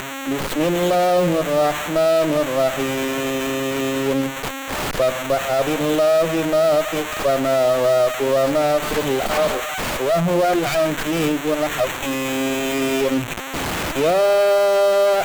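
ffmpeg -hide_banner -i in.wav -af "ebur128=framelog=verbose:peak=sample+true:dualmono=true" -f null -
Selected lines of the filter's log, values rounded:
Integrated loudness:
  I:         -16.3 LUFS
  Threshold: -26.3 LUFS
Loudness range:
  LRA:         3.1 LU
  Threshold: -36.5 LUFS
  LRA low:   -18.3 LUFS
  LRA high:  -15.2 LUFS
Sample peak:
  Peak:       -7.9 dBFS
True peak:
  Peak:       -7.9 dBFS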